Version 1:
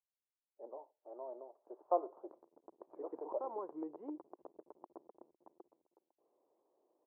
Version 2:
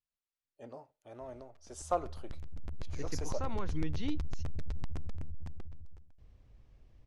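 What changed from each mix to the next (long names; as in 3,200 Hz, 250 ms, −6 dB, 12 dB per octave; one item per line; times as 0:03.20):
master: remove elliptic band-pass filter 340–1,000 Hz, stop band 70 dB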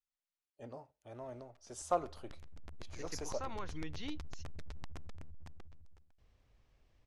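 first voice: remove high-pass filter 600 Hz 6 dB per octave
master: add low-shelf EQ 450 Hz −11 dB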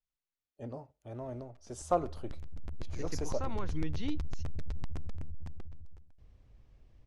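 master: add low-shelf EQ 450 Hz +11 dB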